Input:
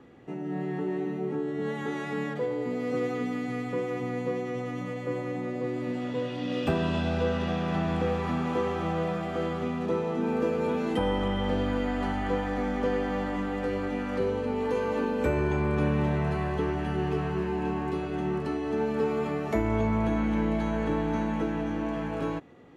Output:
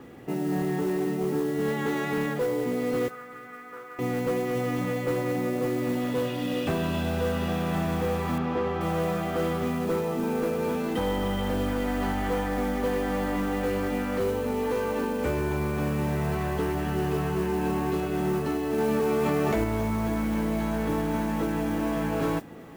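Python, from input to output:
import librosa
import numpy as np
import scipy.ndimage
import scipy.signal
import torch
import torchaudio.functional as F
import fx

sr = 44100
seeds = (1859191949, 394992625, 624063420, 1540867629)

y = fx.rider(x, sr, range_db=5, speed_s=0.5)
y = np.clip(10.0 ** (23.5 / 20.0) * y, -1.0, 1.0) / 10.0 ** (23.5 / 20.0)
y = fx.bandpass_q(y, sr, hz=1400.0, q=3.9, at=(3.08, 3.99))
y = fx.mod_noise(y, sr, seeds[0], snr_db=22)
y = fx.air_absorb(y, sr, metres=160.0, at=(8.38, 8.81))
y = fx.echo_feedback(y, sr, ms=387, feedback_pct=60, wet_db=-23.0)
y = fx.env_flatten(y, sr, amount_pct=100, at=(18.78, 19.64))
y = y * 10.0 ** (2.0 / 20.0)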